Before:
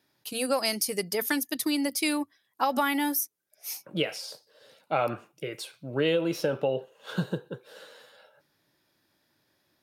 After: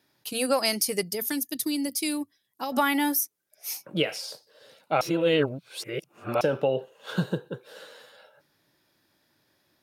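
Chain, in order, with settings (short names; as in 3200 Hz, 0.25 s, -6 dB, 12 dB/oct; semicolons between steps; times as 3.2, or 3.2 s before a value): 1.03–2.72 bell 1200 Hz -11.5 dB 2.8 oct; 5.01–6.41 reverse; gain +2.5 dB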